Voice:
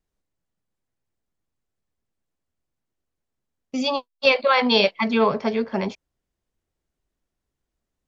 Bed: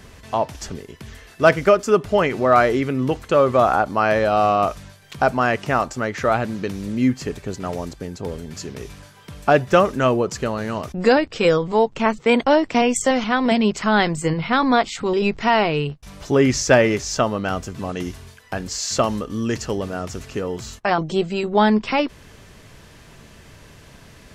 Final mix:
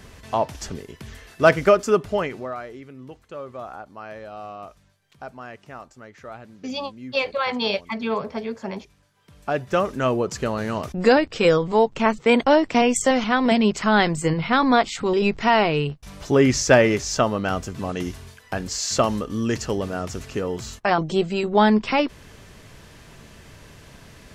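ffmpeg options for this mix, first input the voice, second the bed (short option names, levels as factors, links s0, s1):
-filter_complex "[0:a]adelay=2900,volume=0.501[s0];[1:a]volume=7.94,afade=t=out:st=1.82:d=0.74:silence=0.11885,afade=t=in:st=9.11:d=1.49:silence=0.112202[s1];[s0][s1]amix=inputs=2:normalize=0"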